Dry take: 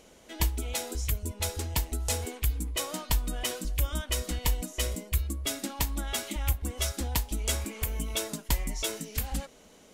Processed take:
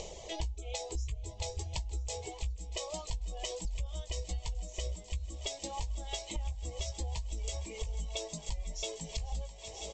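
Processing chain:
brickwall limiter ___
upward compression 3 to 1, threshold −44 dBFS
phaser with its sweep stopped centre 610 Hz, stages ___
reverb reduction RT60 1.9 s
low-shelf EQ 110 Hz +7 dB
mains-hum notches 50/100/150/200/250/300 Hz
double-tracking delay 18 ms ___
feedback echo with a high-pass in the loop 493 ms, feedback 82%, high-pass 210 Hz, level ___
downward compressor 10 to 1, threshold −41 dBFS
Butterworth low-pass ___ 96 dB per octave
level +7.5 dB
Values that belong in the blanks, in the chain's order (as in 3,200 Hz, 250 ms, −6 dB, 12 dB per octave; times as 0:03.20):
−20 dBFS, 4, −9 dB, −16 dB, 7,800 Hz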